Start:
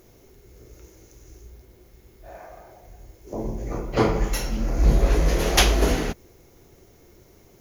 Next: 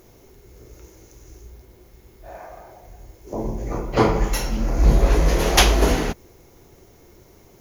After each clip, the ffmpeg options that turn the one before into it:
ffmpeg -i in.wav -af "equalizer=frequency=940:width=2.5:gain=3.5,volume=2.5dB" out.wav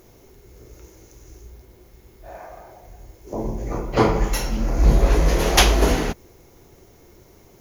ffmpeg -i in.wav -af anull out.wav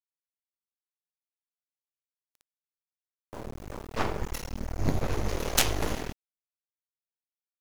ffmpeg -i in.wav -af "aeval=exprs='0.891*(cos(1*acos(clip(val(0)/0.891,-1,1)))-cos(1*PI/2))+0.398*(cos(3*acos(clip(val(0)/0.891,-1,1)))-cos(3*PI/2))+0.0398*(cos(4*acos(clip(val(0)/0.891,-1,1)))-cos(4*PI/2))+0.1*(cos(6*acos(clip(val(0)/0.891,-1,1)))-cos(6*PI/2))':channel_layout=same,aeval=exprs='val(0)*gte(abs(val(0)),0.015)':channel_layout=same,volume=-3.5dB" out.wav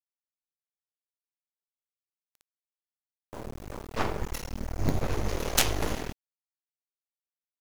ffmpeg -i in.wav -af "acrusher=bits=6:dc=4:mix=0:aa=0.000001" out.wav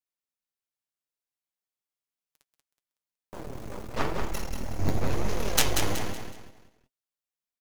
ffmpeg -i in.wav -filter_complex "[0:a]flanger=delay=3.8:depth=6.6:regen=44:speed=0.93:shape=triangular,asplit=2[link_01][link_02];[link_02]aecho=0:1:186|372|558|744:0.501|0.18|0.065|0.0234[link_03];[link_01][link_03]amix=inputs=2:normalize=0,volume=4dB" out.wav

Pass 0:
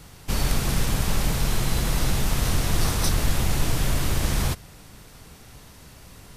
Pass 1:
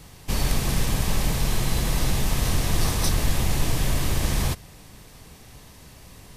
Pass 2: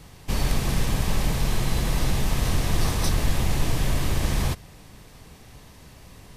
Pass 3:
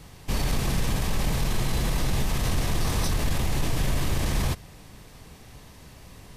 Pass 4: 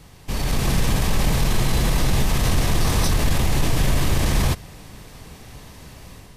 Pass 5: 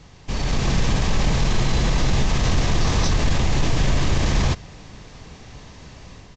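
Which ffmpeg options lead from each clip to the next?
ffmpeg -i in.wav -af "bandreject=frequency=1400:width=8.9" out.wav
ffmpeg -i in.wav -af "highshelf=frequency=4900:gain=-5" out.wav
ffmpeg -i in.wav -af "alimiter=limit=-16.5dB:level=0:latency=1:release=12" out.wav
ffmpeg -i in.wav -af "dynaudnorm=framelen=340:gausssize=3:maxgain=6dB" out.wav
ffmpeg -i in.wav -af "aresample=16000,aresample=44100" out.wav

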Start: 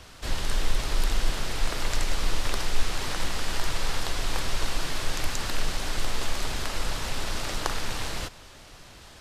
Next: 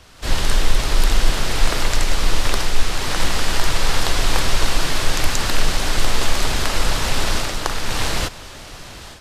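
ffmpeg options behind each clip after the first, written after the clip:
ffmpeg -i in.wav -af "dynaudnorm=framelen=160:gausssize=3:maxgain=11.5dB" out.wav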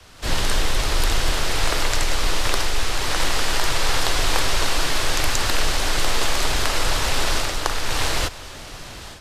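ffmpeg -i in.wav -filter_complex "[0:a]adynamicequalizer=threshold=0.00501:dfrequency=190:dqfactor=1.8:tfrequency=190:tqfactor=1.8:attack=5:release=100:ratio=0.375:range=4:mode=cutabove:tftype=bell,acrossover=split=100[link_01][link_02];[link_01]asoftclip=type=tanh:threshold=-14.5dB[link_03];[link_03][link_02]amix=inputs=2:normalize=0" out.wav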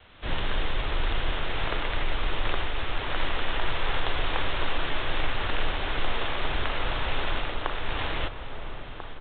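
ffmpeg -i in.wav -filter_complex "[0:a]aresample=8000,acrusher=bits=7:mix=0:aa=0.000001,aresample=44100,asplit=2[link_01][link_02];[link_02]adelay=1341,volume=-8dB,highshelf=frequency=4000:gain=-30.2[link_03];[link_01][link_03]amix=inputs=2:normalize=0,volume=-6.5dB" out.wav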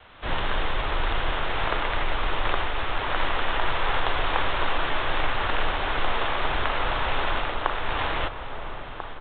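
ffmpeg -i in.wav -af "equalizer=frequency=1000:width_type=o:width=2:gain=7" out.wav

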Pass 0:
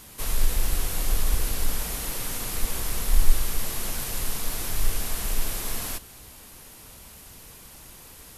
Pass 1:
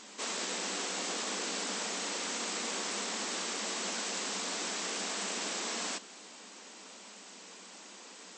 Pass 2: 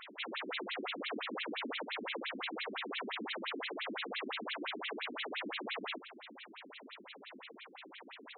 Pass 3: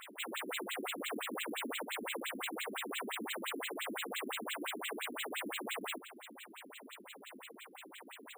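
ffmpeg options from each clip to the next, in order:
ffmpeg -i in.wav -af "bass=frequency=250:gain=-4,treble=frequency=4000:gain=1,afftfilt=real='re*between(b*sr/4096,180,8200)':imag='im*between(b*sr/4096,180,8200)':win_size=4096:overlap=0.75" out.wav
ffmpeg -i in.wav -af "asoftclip=type=tanh:threshold=-33dB,afftfilt=real='re*between(b*sr/1024,250*pow(3000/250,0.5+0.5*sin(2*PI*5.8*pts/sr))/1.41,250*pow(3000/250,0.5+0.5*sin(2*PI*5.8*pts/sr))*1.41)':imag='im*between(b*sr/1024,250*pow(3000/250,0.5+0.5*sin(2*PI*5.8*pts/sr))/1.41,250*pow(3000/250,0.5+0.5*sin(2*PI*5.8*pts/sr))*1.41)':win_size=1024:overlap=0.75,volume=8dB" out.wav
ffmpeg -i in.wav -af "acrusher=samples=4:mix=1:aa=0.000001" out.wav

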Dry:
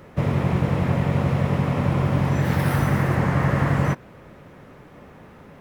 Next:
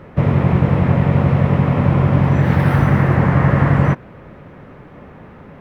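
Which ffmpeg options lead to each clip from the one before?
ffmpeg -i in.wav -af "bass=frequency=250:gain=2,treble=frequency=4000:gain=-14,volume=5.5dB" out.wav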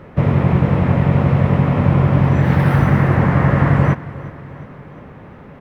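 ffmpeg -i in.wav -af "aecho=1:1:359|718|1077|1436|1795:0.126|0.0692|0.0381|0.0209|0.0115" out.wav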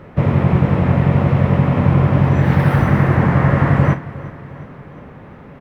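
ffmpeg -i in.wav -filter_complex "[0:a]asplit=2[link_01][link_02];[link_02]adelay=46,volume=-12.5dB[link_03];[link_01][link_03]amix=inputs=2:normalize=0" out.wav

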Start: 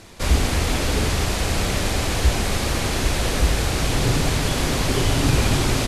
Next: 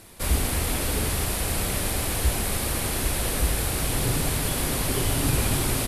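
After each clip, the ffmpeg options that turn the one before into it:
ffmpeg -i in.wav -af "aexciter=amount=5.8:drive=2.6:freq=8800,volume=-5.5dB" out.wav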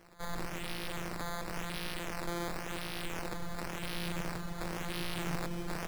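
ffmpeg -i in.wav -filter_complex "[0:a]afftfilt=real='hypot(re,im)*cos(PI*b)':imag='0':win_size=1024:overlap=0.75,acrossover=split=380|3000[link_01][link_02][link_03];[link_02]acompressor=threshold=-38dB:ratio=2[link_04];[link_01][link_04][link_03]amix=inputs=3:normalize=0,acrusher=samples=11:mix=1:aa=0.000001:lfo=1:lforange=11:lforate=0.94,volume=-8dB" out.wav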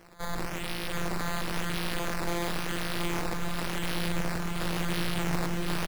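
ffmpeg -i in.wav -af "aecho=1:1:725:0.668,volume=5dB" out.wav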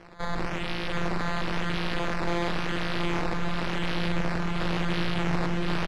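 ffmpeg -i in.wav -filter_complex "[0:a]lowpass=4100,asplit=2[link_01][link_02];[link_02]alimiter=level_in=2.5dB:limit=-24dB:level=0:latency=1,volume=-2.5dB,volume=-1.5dB[link_03];[link_01][link_03]amix=inputs=2:normalize=0" out.wav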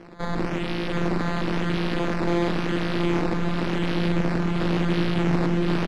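ffmpeg -i in.wav -af "equalizer=frequency=270:width=0.9:gain=10.5" out.wav

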